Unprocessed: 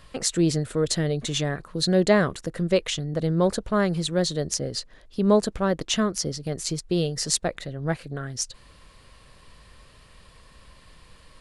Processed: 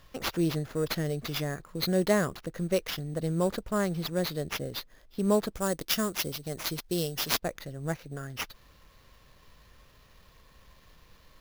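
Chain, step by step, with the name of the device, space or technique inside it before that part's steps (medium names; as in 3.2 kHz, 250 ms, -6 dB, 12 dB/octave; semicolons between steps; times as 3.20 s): early companding sampler (sample-rate reducer 8.4 kHz, jitter 0%; companded quantiser 8-bit); 5.55–7.40 s: tone controls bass -2 dB, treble +8 dB; trim -6 dB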